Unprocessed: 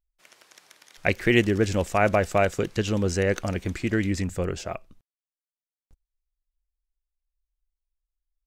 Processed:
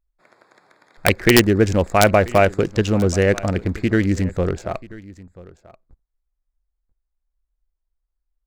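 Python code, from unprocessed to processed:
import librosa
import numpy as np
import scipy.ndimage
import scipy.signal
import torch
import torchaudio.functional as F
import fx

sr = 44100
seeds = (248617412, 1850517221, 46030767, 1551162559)

y = fx.wiener(x, sr, points=15)
y = (np.mod(10.0 ** (8.5 / 20.0) * y + 1.0, 2.0) - 1.0) / 10.0 ** (8.5 / 20.0)
y = y + 10.0 ** (-20.5 / 20.0) * np.pad(y, (int(986 * sr / 1000.0), 0))[:len(y)]
y = y * librosa.db_to_amplitude(7.0)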